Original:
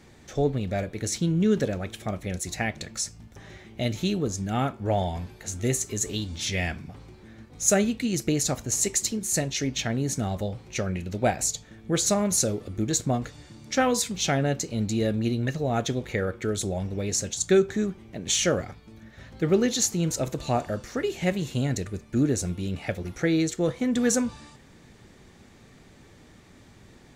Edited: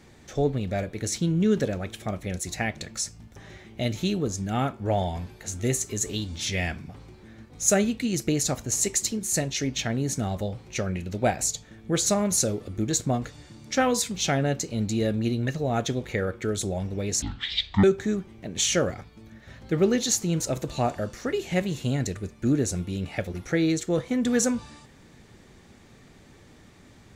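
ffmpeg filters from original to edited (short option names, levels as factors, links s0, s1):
-filter_complex "[0:a]asplit=3[s0][s1][s2];[s0]atrim=end=17.224[s3];[s1]atrim=start=17.22:end=17.54,asetpts=PTS-STARTPTS,asetrate=22932,aresample=44100,atrim=end_sample=27138,asetpts=PTS-STARTPTS[s4];[s2]atrim=start=17.536[s5];[s3][s4]acrossfade=d=0.004:c1=hsin:c2=hsin[s6];[s6][s5]acrossfade=d=0.004:c1=hsin:c2=hsin"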